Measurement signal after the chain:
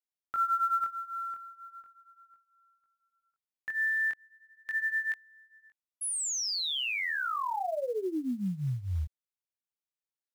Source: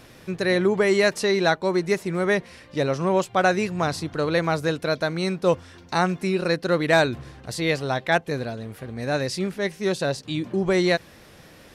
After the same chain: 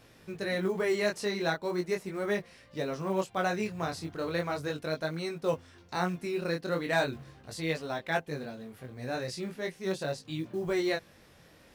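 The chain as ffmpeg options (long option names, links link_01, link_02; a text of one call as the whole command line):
ffmpeg -i in.wav -af "flanger=delay=18.5:depth=5.9:speed=0.38,acrusher=bits=8:mode=log:mix=0:aa=0.000001,volume=-6.5dB" out.wav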